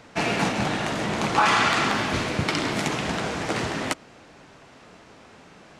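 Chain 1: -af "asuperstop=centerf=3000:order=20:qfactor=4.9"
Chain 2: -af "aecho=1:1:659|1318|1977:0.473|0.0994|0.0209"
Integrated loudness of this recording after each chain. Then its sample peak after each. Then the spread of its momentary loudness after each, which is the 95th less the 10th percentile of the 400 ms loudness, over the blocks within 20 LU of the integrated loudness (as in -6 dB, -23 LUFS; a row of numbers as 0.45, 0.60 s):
-24.5, -23.5 LUFS; -7.5, -7.5 dBFS; 8, 14 LU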